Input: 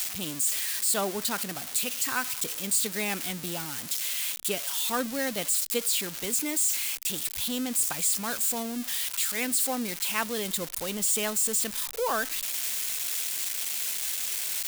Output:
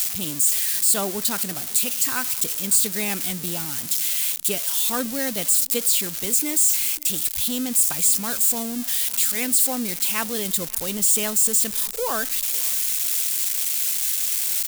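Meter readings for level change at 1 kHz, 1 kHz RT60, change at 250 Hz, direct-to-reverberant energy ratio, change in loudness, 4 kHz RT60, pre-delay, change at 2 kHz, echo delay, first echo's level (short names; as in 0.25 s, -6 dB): +1.0 dB, none, +4.5 dB, none, +7.0 dB, none, none, +1.5 dB, 0.551 s, -24.0 dB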